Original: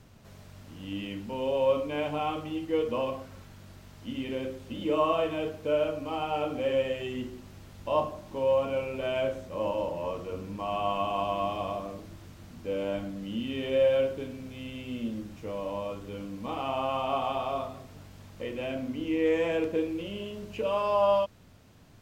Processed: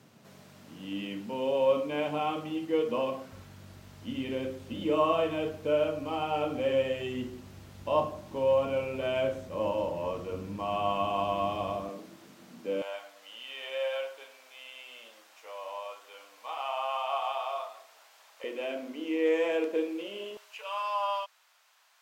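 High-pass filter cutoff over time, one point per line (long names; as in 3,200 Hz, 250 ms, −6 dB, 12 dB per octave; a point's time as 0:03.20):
high-pass filter 24 dB per octave
140 Hz
from 0:03.32 56 Hz
from 0:11.89 190 Hz
from 0:12.82 690 Hz
from 0:18.44 310 Hz
from 0:20.37 880 Hz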